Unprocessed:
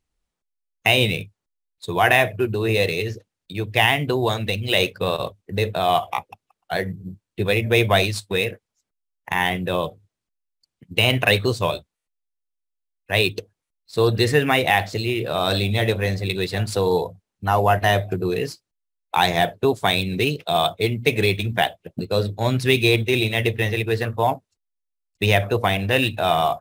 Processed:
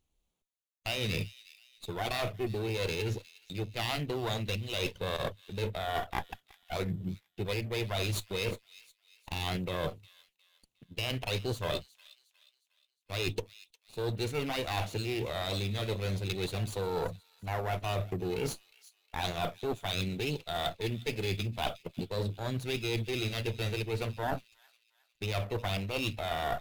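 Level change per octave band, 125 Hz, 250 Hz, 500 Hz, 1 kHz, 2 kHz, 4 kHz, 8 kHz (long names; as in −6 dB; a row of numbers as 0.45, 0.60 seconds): −11.0, −12.0, −13.5, −15.0, −16.5, −12.5, −9.0 decibels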